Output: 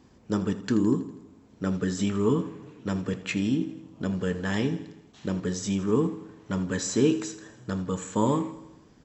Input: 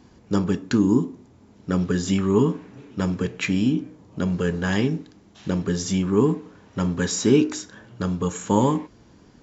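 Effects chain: speed mistake 24 fps film run at 25 fps; feedback delay 81 ms, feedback 58%, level -15 dB; trim -5 dB

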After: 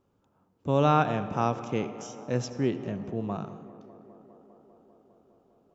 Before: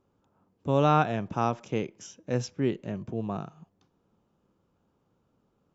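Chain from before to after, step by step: tape echo 201 ms, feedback 89%, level -17 dB, low-pass 2.4 kHz; on a send at -14 dB: reverberation RT60 1.3 s, pre-delay 62 ms

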